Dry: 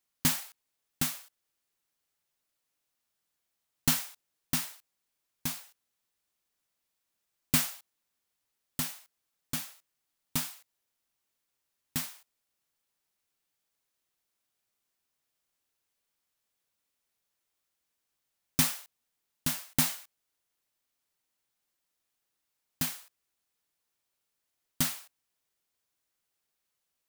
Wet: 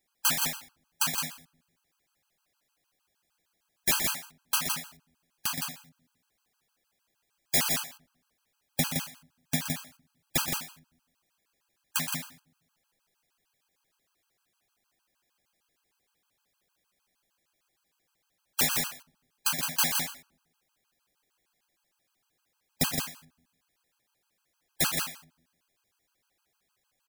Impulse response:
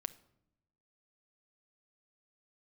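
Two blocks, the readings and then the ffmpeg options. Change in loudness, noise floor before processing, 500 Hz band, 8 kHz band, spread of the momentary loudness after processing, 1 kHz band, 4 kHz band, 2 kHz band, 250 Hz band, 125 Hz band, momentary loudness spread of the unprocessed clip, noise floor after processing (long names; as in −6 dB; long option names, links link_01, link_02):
+2.5 dB, −83 dBFS, +8.5 dB, +4.0 dB, 12 LU, +7.0 dB, +5.0 dB, +6.0 dB, −0.5 dB, 0.0 dB, 16 LU, −79 dBFS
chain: -filter_complex "[0:a]highshelf=frequency=4100:gain=-6,aeval=exprs='(mod(16.8*val(0)+1,2)-1)/16.8':channel_layout=same,aecho=1:1:122.4|166.2:0.355|0.562,asplit=2[link_01][link_02];[1:a]atrim=start_sample=2205,asetrate=48510,aresample=44100[link_03];[link_02][link_03]afir=irnorm=-1:irlink=0,volume=4.5dB[link_04];[link_01][link_04]amix=inputs=2:normalize=0,afftfilt=real='re*gt(sin(2*PI*6.5*pts/sr)*(1-2*mod(floor(b*sr/1024/820),2)),0)':imag='im*gt(sin(2*PI*6.5*pts/sr)*(1-2*mod(floor(b*sr/1024/820),2)),0)':win_size=1024:overlap=0.75,volume=4dB"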